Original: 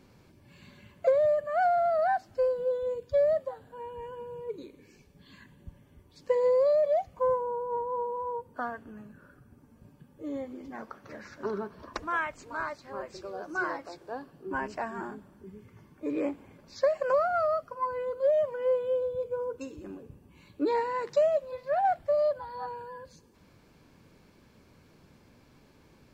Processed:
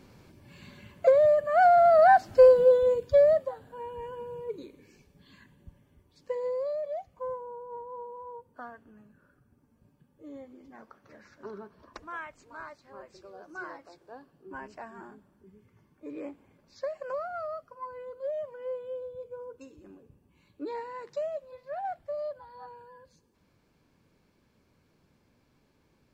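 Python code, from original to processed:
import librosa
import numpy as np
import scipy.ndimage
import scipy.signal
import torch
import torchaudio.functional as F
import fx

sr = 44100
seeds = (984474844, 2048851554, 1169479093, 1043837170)

y = fx.gain(x, sr, db=fx.line((1.36, 3.5), (2.5, 11.5), (3.53, 1.5), (4.31, 1.5), (6.84, -9.0)))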